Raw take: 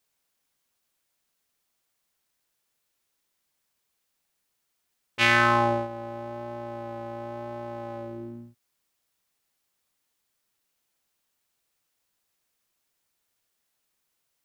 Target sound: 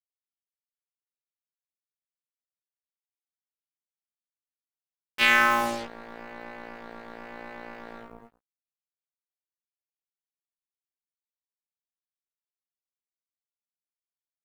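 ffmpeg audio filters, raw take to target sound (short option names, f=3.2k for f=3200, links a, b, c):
-filter_complex "[0:a]acrossover=split=210|1300[a][b][c];[a]acompressor=threshold=-43dB:ratio=12[d];[d][b][c]amix=inputs=3:normalize=0,acrusher=bits=4:mix=0:aa=0.5,asplit=2[e][f];[f]adelay=13,volume=-6dB[g];[e][g]amix=inputs=2:normalize=0,volume=-1.5dB"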